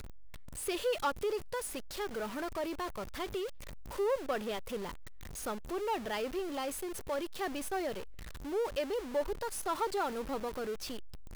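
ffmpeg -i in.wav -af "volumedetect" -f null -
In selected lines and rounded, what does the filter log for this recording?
mean_volume: -36.5 dB
max_volume: -24.0 dB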